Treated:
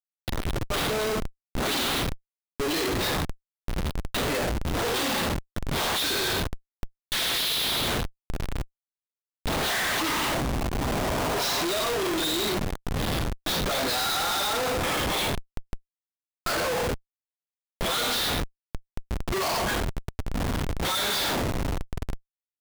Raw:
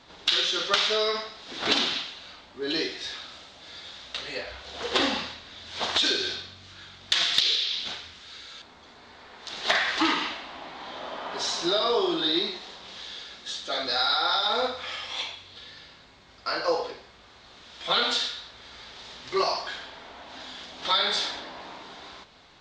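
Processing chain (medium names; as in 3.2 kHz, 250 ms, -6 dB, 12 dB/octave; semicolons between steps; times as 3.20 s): fade-in on the opening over 3.04 s; Schmitt trigger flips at -35 dBFS; trim +4.5 dB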